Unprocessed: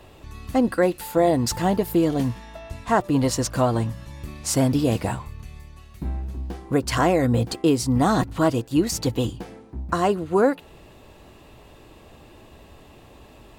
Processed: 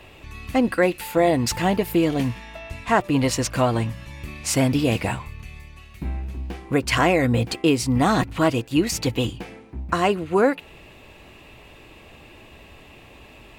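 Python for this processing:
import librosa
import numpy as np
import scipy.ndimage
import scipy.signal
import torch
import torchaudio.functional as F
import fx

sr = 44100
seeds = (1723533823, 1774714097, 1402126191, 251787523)

y = fx.peak_eq(x, sr, hz=2400.0, db=10.5, octaves=0.82)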